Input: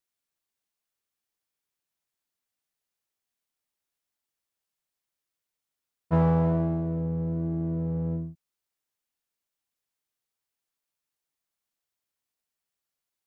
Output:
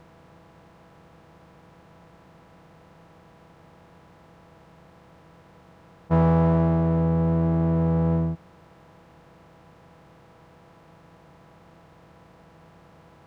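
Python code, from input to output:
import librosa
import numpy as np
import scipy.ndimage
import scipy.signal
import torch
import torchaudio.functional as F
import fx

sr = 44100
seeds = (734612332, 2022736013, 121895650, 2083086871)

y = fx.bin_compress(x, sr, power=0.4)
y = y * librosa.db_to_amplitude(2.0)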